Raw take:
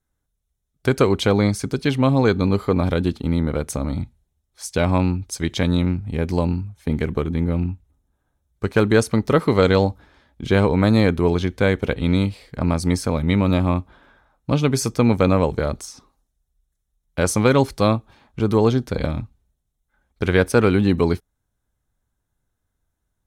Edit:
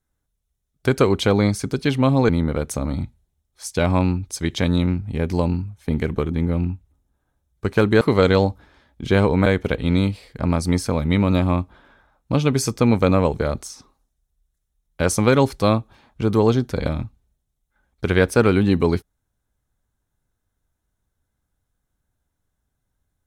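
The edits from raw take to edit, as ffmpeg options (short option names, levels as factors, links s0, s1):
-filter_complex "[0:a]asplit=4[s0][s1][s2][s3];[s0]atrim=end=2.292[s4];[s1]atrim=start=3.278:end=9.002[s5];[s2]atrim=start=9.408:end=10.862[s6];[s3]atrim=start=11.638[s7];[s4][s5]acrossfade=d=0.004:c1=hsin:c2=hsin[s8];[s8][s6]acrossfade=d=0.004:c1=hsin:c2=hsin[s9];[s9][s7]acrossfade=d=0.004:c1=hsin:c2=hsin"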